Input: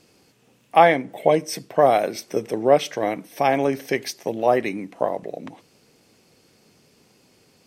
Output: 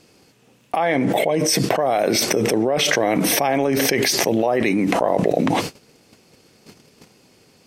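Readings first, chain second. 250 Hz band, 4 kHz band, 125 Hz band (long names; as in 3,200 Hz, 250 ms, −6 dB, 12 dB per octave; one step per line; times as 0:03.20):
+7.5 dB, +11.5 dB, +7.5 dB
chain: high-shelf EQ 12,000 Hz −3 dB
noise gate −53 dBFS, range −27 dB
envelope flattener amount 100%
level −9 dB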